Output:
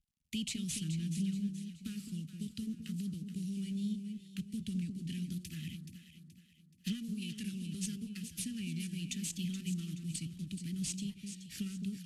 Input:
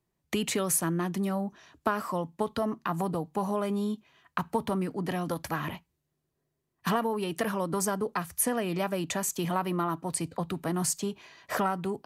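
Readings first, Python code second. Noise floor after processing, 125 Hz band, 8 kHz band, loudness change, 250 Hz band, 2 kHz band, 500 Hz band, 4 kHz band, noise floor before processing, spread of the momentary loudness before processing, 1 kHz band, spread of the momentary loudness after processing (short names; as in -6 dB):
-64 dBFS, -4.0 dB, -10.0 dB, -9.0 dB, -5.5 dB, -15.5 dB, -29.5 dB, -4.0 dB, -81 dBFS, 6 LU, under -40 dB, 7 LU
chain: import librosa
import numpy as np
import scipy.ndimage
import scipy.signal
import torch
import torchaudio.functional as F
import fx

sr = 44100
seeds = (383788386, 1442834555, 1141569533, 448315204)

y = fx.cvsd(x, sr, bps=64000)
y = fx.vibrato(y, sr, rate_hz=0.77, depth_cents=74.0)
y = scipy.signal.sosfilt(scipy.signal.cheby1(3, 1.0, [220.0, 2700.0], 'bandstop', fs=sr, output='sos'), y)
y = fx.cheby_harmonics(y, sr, harmonics=(2, 3, 5), levels_db=(-19, -14, -34), full_scale_db=-11.0)
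y = fx.env_lowpass_down(y, sr, base_hz=2800.0, full_db=-25.0)
y = fx.echo_alternate(y, sr, ms=213, hz=1100.0, feedback_pct=63, wet_db=-6)
y = F.gain(torch.from_numpy(y), 1.0).numpy()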